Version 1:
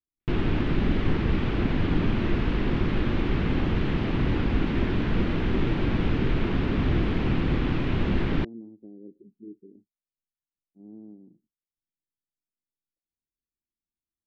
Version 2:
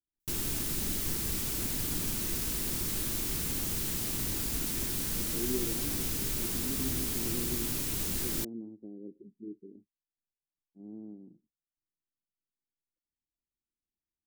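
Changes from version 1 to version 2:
background: add first-order pre-emphasis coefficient 0.8
master: remove low-pass filter 3,100 Hz 24 dB per octave

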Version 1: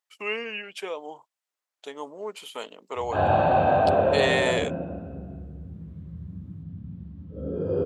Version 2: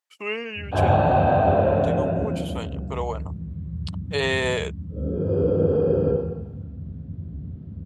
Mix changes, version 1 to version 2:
background: entry −2.40 s
master: add low-shelf EQ 200 Hz +10.5 dB

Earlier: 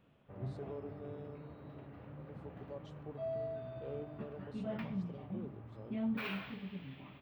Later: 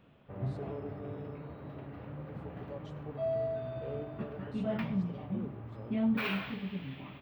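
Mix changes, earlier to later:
speech: send on
background +6.5 dB

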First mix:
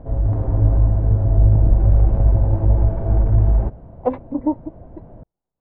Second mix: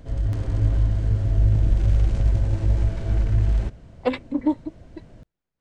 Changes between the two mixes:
background −5.0 dB
master: remove low-pass with resonance 830 Hz, resonance Q 1.9

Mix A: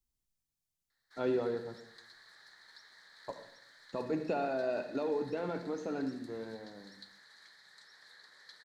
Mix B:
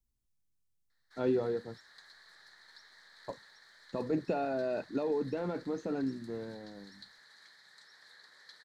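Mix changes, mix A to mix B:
speech: add low-shelf EQ 420 Hz +7.5 dB
reverb: off

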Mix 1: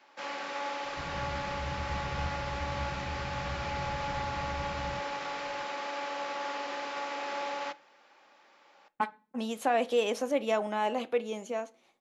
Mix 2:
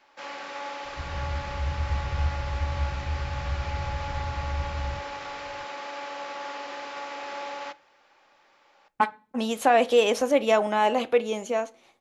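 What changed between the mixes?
speech +8.0 dB
master: add low shelf with overshoot 120 Hz +9 dB, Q 1.5

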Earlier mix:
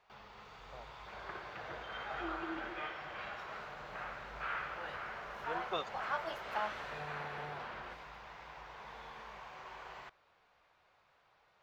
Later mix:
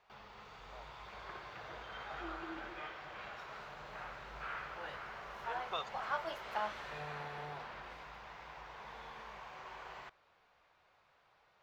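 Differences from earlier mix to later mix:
speech: add high-pass filter 630 Hz
second sound −4.5 dB

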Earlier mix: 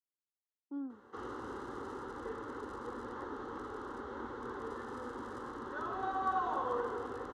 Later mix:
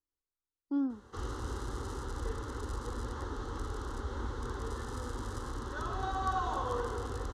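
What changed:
speech +8.5 dB
master: remove three-way crossover with the lows and the highs turned down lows −23 dB, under 170 Hz, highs −15 dB, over 2,600 Hz

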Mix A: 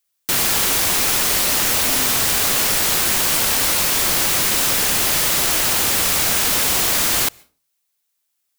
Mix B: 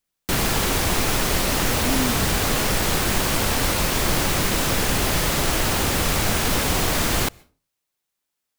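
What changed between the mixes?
speech +9.5 dB
background: add spectral tilt −2.5 dB per octave

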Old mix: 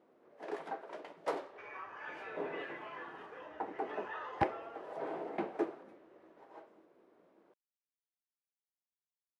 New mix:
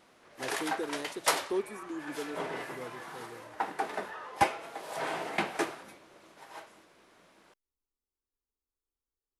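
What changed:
speech: unmuted
first sound: remove resonant band-pass 390 Hz, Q 1.3

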